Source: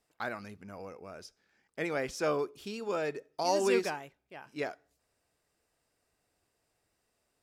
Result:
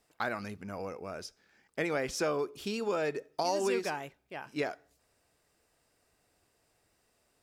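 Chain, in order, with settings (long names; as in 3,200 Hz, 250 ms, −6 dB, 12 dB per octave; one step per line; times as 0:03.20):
downward compressor 4 to 1, threshold −34 dBFS, peak gain reduction 10 dB
level +5.5 dB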